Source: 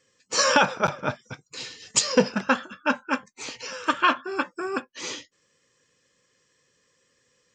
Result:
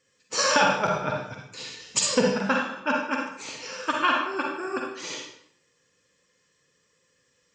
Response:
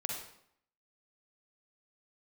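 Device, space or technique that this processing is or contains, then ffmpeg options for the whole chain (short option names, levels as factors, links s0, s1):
bathroom: -filter_complex "[0:a]asettb=1/sr,asplit=3[s0][s1][s2];[s0]atrim=end=0.874[s3];[s1]atrim=start=0.87:end=1.42,asetpts=PTS-STARTPTS,afade=t=in:d=0.004:c=qsin,afade=t=out:st=0.546:d=0.004:c=qsin,lowpass=7100[s4];[s2]atrim=start=1.416[s5];[s3][s4]acrossfade=d=0.004:c1=hsin:c2=qsin[s6];[s6][s5]acrossfade=d=0.004:c1=qsin:c2=hsin[s7];[1:a]atrim=start_sample=2205[s8];[s7][s8]afir=irnorm=-1:irlink=0,volume=0.75"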